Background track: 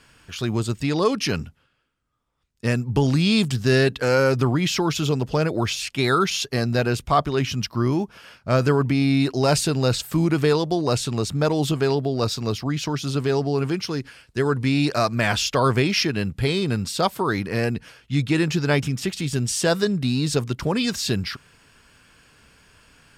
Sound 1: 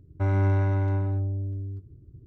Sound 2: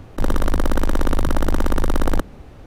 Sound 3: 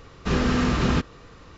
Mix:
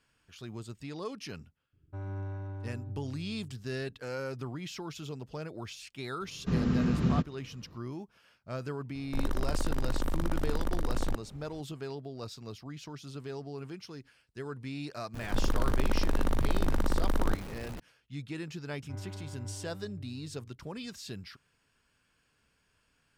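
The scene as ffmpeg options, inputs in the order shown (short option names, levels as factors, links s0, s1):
-filter_complex "[1:a]asplit=2[s0][s1];[2:a]asplit=2[s2][s3];[0:a]volume=0.119[s4];[s0]bandreject=f=2100:w=7.4[s5];[3:a]equalizer=f=160:t=o:w=2.1:g=15[s6];[s3]aeval=exprs='val(0)+0.5*0.0376*sgn(val(0))':c=same[s7];[s1]flanger=delay=3.3:depth=7.4:regen=64:speed=1.9:shape=triangular[s8];[s5]atrim=end=2.26,asetpts=PTS-STARTPTS,volume=0.168,afade=t=in:d=0.004:c=hsin,afade=t=out:st=2.256:d=0.004:c=hsin,adelay=1730[s9];[s6]atrim=end=1.57,asetpts=PTS-STARTPTS,volume=0.158,afade=t=in:d=0.004:c=hsin,afade=t=out:st=1.566:d=0.004:c=hsin,adelay=6210[s10];[s2]atrim=end=2.66,asetpts=PTS-STARTPTS,volume=0.224,afade=t=in:d=0.004:c=hsin,afade=t=out:st=2.656:d=0.004:c=hsin,adelay=8950[s11];[s7]atrim=end=2.66,asetpts=PTS-STARTPTS,volume=0.299,afade=t=in:d=0.004:c=hsin,afade=t=out:st=2.656:d=0.004:c=hsin,adelay=15140[s12];[s8]atrim=end=2.26,asetpts=PTS-STARTPTS,volume=0.168,afade=t=in:d=0.004:c=hsin,afade=t=out:st=2.256:d=0.004:c=hsin,adelay=18690[s13];[s4][s9][s10][s11][s12][s13]amix=inputs=6:normalize=0"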